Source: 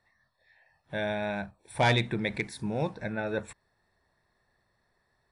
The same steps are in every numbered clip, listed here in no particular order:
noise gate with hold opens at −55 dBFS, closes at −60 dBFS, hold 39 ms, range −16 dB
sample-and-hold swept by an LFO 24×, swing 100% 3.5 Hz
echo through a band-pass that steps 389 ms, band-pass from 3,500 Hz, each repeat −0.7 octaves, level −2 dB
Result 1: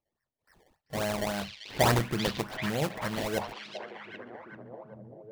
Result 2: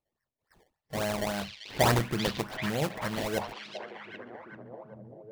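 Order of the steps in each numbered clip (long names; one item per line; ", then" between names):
noise gate with hold, then sample-and-hold swept by an LFO, then echo through a band-pass that steps
sample-and-hold swept by an LFO, then noise gate with hold, then echo through a band-pass that steps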